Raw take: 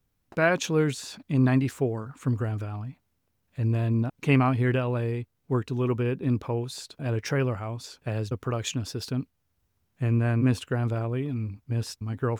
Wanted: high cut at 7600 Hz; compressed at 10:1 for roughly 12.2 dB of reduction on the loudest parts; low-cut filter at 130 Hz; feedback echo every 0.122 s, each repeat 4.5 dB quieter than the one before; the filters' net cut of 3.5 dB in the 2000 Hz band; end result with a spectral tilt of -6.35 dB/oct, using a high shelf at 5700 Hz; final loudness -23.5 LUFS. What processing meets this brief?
HPF 130 Hz; LPF 7600 Hz; bell 2000 Hz -4.5 dB; high shelf 5700 Hz -3 dB; compressor 10:1, threshold -30 dBFS; feedback echo 0.122 s, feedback 60%, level -4.5 dB; gain +11.5 dB

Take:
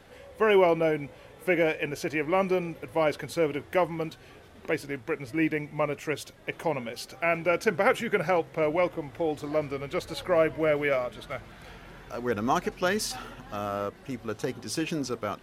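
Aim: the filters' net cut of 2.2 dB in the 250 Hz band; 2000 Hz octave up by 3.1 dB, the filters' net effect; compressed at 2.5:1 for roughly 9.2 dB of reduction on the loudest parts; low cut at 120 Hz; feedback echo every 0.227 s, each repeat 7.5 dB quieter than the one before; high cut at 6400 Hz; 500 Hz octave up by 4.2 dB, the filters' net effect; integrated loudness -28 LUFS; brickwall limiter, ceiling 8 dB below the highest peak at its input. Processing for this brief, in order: HPF 120 Hz; LPF 6400 Hz; bell 250 Hz -7 dB; bell 500 Hz +6.5 dB; bell 2000 Hz +3.5 dB; compressor 2.5:1, threshold -29 dBFS; limiter -22 dBFS; feedback echo 0.227 s, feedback 42%, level -7.5 dB; gain +5 dB

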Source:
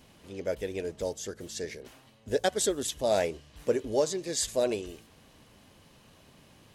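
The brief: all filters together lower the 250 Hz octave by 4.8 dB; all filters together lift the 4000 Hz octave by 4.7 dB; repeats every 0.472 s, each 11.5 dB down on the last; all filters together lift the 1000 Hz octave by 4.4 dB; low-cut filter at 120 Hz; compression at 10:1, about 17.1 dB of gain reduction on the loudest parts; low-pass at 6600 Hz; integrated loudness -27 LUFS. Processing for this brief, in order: HPF 120 Hz; LPF 6600 Hz; bell 250 Hz -8 dB; bell 1000 Hz +7.5 dB; bell 4000 Hz +6 dB; compressor 10:1, threshold -37 dBFS; feedback echo 0.472 s, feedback 27%, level -11.5 dB; gain +15 dB

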